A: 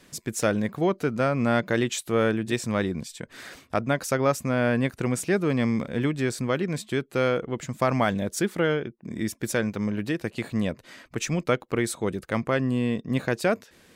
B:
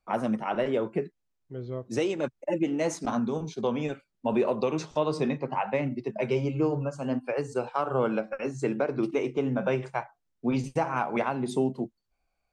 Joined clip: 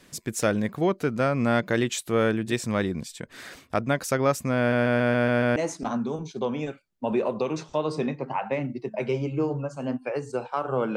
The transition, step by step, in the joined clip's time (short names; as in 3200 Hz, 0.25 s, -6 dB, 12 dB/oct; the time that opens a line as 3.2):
A
4.58 stutter in place 0.14 s, 7 plays
5.56 switch to B from 2.78 s